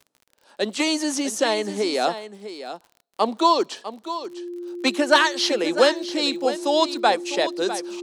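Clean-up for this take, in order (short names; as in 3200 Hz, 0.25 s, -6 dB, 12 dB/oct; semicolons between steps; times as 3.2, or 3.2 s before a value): de-click; notch 350 Hz, Q 30; inverse comb 0.651 s -12 dB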